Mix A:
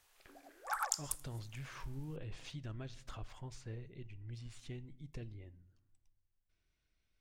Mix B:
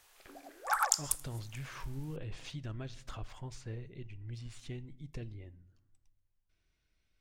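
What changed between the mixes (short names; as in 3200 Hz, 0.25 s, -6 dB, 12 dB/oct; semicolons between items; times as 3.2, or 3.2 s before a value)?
speech +3.5 dB; background +7.0 dB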